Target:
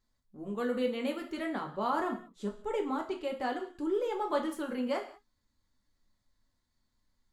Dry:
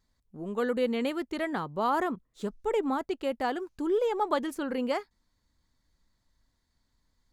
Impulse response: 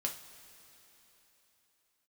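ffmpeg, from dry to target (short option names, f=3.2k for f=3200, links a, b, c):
-filter_complex "[0:a]asettb=1/sr,asplit=3[a][b][c];[a]atrim=end=1.444[d];[b]atrim=start=1.44:end=3.94,asetpts=PTS-STARTPTS,afade=t=in:d=0.004:c=qsin,afade=t=out:st=2.496:d=0.004:c=qsin,lowpass=11k[e];[c]atrim=start=3.936[f];[d][e]acrossfade=d=0.004:c1=hsin:c2=qsin[g];[g][f]acrossfade=d=0.004:c1=qsin:c2=hsin[h];[1:a]atrim=start_sample=2205,afade=t=out:st=0.25:d=0.01,atrim=end_sample=11466[i];[h][i]afir=irnorm=-1:irlink=0,volume=-5dB"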